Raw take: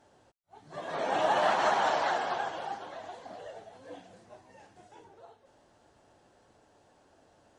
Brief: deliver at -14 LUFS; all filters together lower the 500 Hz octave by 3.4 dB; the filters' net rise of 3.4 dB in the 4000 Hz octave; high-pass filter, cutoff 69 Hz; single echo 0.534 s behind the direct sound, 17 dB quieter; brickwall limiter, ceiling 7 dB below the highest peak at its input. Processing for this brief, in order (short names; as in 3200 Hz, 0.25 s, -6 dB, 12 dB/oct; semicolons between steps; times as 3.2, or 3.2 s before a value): HPF 69 Hz; bell 500 Hz -5 dB; bell 4000 Hz +4.5 dB; limiter -23.5 dBFS; echo 0.534 s -17 dB; gain +20.5 dB